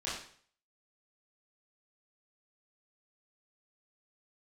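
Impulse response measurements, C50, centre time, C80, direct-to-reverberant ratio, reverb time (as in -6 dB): 2.5 dB, 48 ms, 7.0 dB, -10.0 dB, 0.50 s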